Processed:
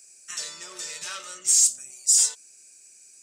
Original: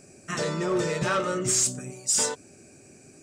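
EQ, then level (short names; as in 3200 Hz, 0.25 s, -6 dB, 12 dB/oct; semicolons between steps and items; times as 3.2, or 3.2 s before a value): differentiator; low shelf 65 Hz +7.5 dB; bell 5100 Hz +6.5 dB 2.9 oct; 0.0 dB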